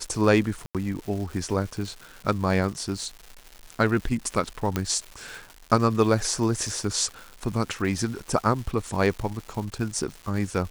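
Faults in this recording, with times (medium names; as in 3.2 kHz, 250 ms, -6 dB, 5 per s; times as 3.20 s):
crackle 360 per s -34 dBFS
0.66–0.75 s: dropout 87 ms
4.76 s: pop -10 dBFS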